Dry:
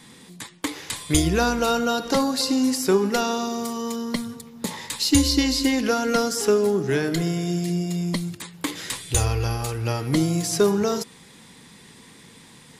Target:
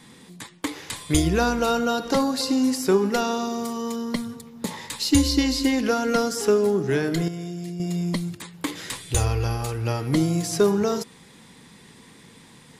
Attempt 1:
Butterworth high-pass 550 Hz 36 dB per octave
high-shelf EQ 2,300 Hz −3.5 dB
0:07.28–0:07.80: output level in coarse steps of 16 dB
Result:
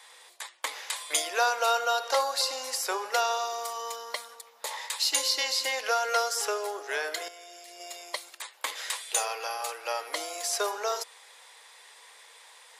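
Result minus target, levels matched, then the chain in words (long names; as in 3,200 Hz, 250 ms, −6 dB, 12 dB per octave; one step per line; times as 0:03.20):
500 Hz band −3.5 dB
high-shelf EQ 2,300 Hz −3.5 dB
0:07.28–0:07.80: output level in coarse steps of 16 dB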